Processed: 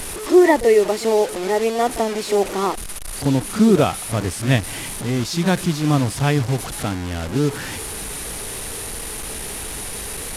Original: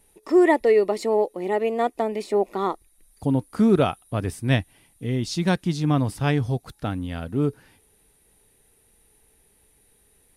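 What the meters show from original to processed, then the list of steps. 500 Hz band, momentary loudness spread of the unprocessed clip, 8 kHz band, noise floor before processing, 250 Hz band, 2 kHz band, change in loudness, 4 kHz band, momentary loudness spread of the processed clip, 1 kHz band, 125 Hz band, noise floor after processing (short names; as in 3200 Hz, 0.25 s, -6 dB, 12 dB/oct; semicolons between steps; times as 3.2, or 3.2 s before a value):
+4.0 dB, 11 LU, +17.0 dB, -62 dBFS, +4.0 dB, +5.5 dB, +3.0 dB, +8.5 dB, 13 LU, +4.0 dB, +4.0 dB, -30 dBFS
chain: delta modulation 64 kbps, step -26.5 dBFS; reverse echo 36 ms -13 dB; gain +3.5 dB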